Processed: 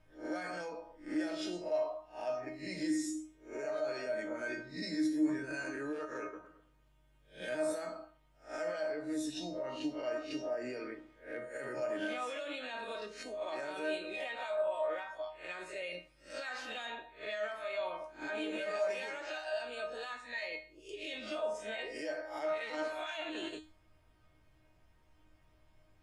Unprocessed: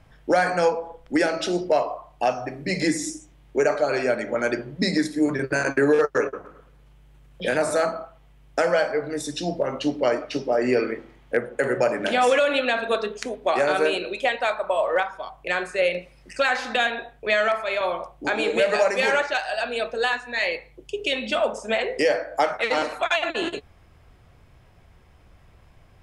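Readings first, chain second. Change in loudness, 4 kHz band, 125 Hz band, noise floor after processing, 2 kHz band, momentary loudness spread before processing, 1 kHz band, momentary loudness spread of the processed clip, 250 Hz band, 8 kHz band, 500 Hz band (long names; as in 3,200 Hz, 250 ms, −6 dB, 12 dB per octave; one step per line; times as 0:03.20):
−15.0 dB, −15.0 dB, −19.5 dB, −67 dBFS, −16.5 dB, 10 LU, −18.0 dB, 9 LU, −11.0 dB, −14.0 dB, −15.0 dB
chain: peak hold with a rise ahead of every peak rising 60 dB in 0.33 s
brickwall limiter −17.5 dBFS, peak gain reduction 9.5 dB
tuned comb filter 310 Hz, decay 0.33 s, harmonics all, mix 90%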